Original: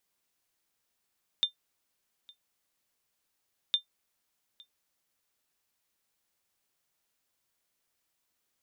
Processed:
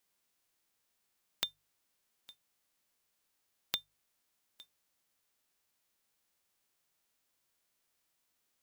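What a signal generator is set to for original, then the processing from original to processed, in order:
ping with an echo 3,600 Hz, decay 0.11 s, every 2.31 s, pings 2, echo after 0.86 s, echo −26 dB −17 dBFS
spectral envelope flattened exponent 0.6
mains-hum notches 50/100/150 Hz
downward compressor, threshold −32 dBFS

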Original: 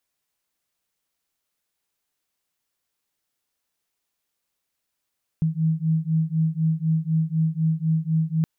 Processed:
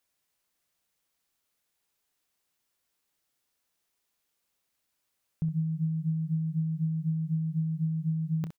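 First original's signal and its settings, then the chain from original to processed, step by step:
two tones that beat 158 Hz, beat 4 Hz, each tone −22.5 dBFS 3.02 s
brickwall limiter −23.5 dBFS
on a send: ambience of single reflections 29 ms −15 dB, 65 ms −11.5 dB

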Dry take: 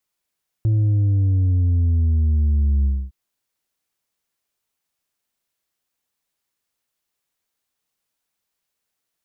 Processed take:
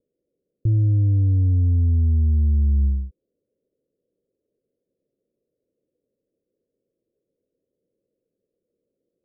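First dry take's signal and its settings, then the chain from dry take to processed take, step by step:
bass drop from 110 Hz, over 2.46 s, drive 4 dB, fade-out 0.26 s, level −15 dB
spike at every zero crossing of −30.5 dBFS
Butterworth low-pass 530 Hz 72 dB per octave

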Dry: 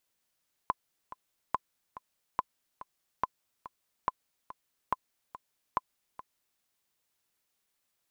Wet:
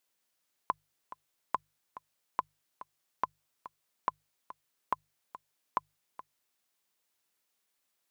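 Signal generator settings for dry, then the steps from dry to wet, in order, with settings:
click track 142 BPM, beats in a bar 2, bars 7, 1,020 Hz, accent 15.5 dB −14 dBFS
low-shelf EQ 110 Hz −10.5 dB
mains-hum notches 50/100/150 Hz

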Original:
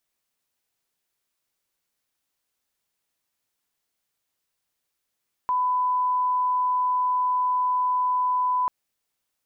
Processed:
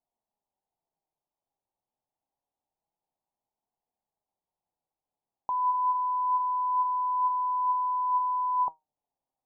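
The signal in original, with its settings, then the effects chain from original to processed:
line-up tone −20 dBFS 3.19 s
drawn EQ curve 510 Hz 0 dB, 830 Hz +10 dB, 1,600 Hz −24 dB
flanger 0.26 Hz, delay 4 ms, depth 4.2 ms, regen +78%

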